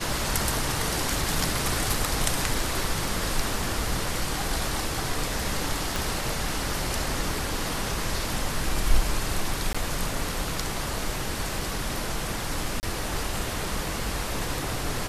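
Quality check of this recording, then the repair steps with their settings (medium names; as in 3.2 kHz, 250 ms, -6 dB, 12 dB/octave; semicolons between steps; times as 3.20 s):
5.96 s: pop
9.73–9.74 s: dropout 15 ms
12.80–12.83 s: dropout 29 ms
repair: de-click; interpolate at 9.73 s, 15 ms; interpolate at 12.80 s, 29 ms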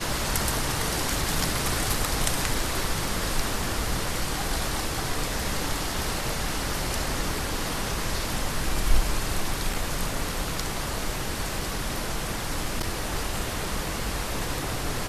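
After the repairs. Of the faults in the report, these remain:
5.96 s: pop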